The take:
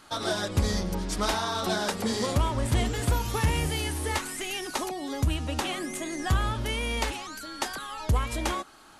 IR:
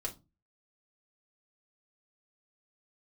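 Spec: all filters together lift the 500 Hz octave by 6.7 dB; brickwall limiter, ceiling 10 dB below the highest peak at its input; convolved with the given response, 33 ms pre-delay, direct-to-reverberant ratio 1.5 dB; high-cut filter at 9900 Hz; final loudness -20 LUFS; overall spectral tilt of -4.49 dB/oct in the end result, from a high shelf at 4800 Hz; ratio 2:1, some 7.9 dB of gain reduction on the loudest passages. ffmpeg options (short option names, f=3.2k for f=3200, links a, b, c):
-filter_complex "[0:a]lowpass=9.9k,equalizer=f=500:t=o:g=8.5,highshelf=f=4.8k:g=4,acompressor=threshold=-33dB:ratio=2,alimiter=level_in=2dB:limit=-24dB:level=0:latency=1,volume=-2dB,asplit=2[a][b];[1:a]atrim=start_sample=2205,adelay=33[c];[b][c]afir=irnorm=-1:irlink=0,volume=-2dB[d];[a][d]amix=inputs=2:normalize=0,volume=12dB"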